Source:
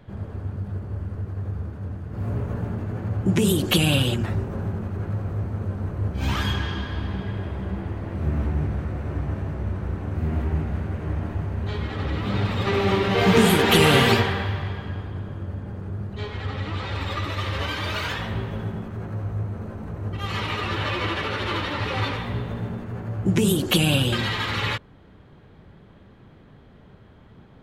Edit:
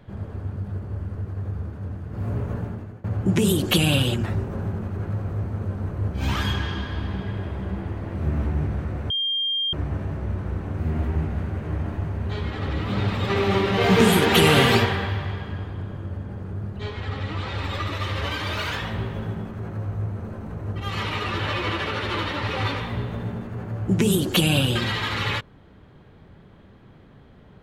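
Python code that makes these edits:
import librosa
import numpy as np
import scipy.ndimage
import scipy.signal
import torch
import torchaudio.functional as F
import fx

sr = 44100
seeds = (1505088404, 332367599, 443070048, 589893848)

y = fx.edit(x, sr, fx.fade_out_to(start_s=2.55, length_s=0.49, floor_db=-20.0),
    fx.insert_tone(at_s=9.1, length_s=0.63, hz=3200.0, db=-21.5), tone=tone)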